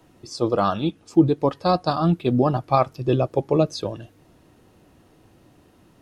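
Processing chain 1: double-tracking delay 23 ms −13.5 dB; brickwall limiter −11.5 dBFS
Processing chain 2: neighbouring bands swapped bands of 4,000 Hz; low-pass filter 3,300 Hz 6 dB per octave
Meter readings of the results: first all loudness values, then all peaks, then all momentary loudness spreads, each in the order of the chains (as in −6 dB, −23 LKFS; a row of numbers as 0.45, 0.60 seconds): −24.0, −22.0 LKFS; −11.5, −7.5 dBFS; 7, 8 LU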